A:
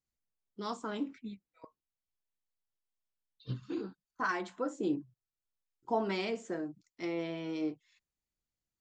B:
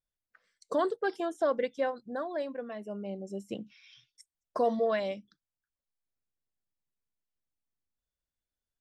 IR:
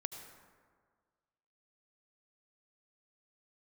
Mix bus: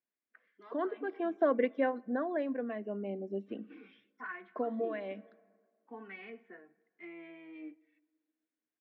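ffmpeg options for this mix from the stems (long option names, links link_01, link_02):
-filter_complex "[0:a]equalizer=frequency=1900:width_type=o:width=1.9:gain=13.5,asplit=2[link_01][link_02];[link_02]adelay=2.4,afreqshift=-0.45[link_03];[link_01][link_03]amix=inputs=2:normalize=1,volume=-14.5dB,asplit=3[link_04][link_05][link_06];[link_05]volume=-14dB[link_07];[1:a]volume=3dB,asplit=2[link_08][link_09];[link_09]volume=-21dB[link_10];[link_06]apad=whole_len=388362[link_11];[link_08][link_11]sidechaincompress=threshold=-56dB:ratio=5:attack=10:release=337[link_12];[2:a]atrim=start_sample=2205[link_13];[link_07][link_10]amix=inputs=2:normalize=0[link_14];[link_14][link_13]afir=irnorm=-1:irlink=0[link_15];[link_04][link_12][link_15]amix=inputs=3:normalize=0,highpass=frequency=230:width=0.5412,highpass=frequency=230:width=1.3066,equalizer=frequency=250:width_type=q:width=4:gain=6,equalizer=frequency=560:width_type=q:width=4:gain=-5,equalizer=frequency=890:width_type=q:width=4:gain=-7,equalizer=frequency=1300:width_type=q:width=4:gain=-6,lowpass=frequency=2400:width=0.5412,lowpass=frequency=2400:width=1.3066"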